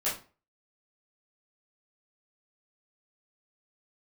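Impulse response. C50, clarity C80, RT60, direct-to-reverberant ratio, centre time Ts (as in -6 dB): 7.0 dB, 13.5 dB, 0.35 s, -10.5 dB, 31 ms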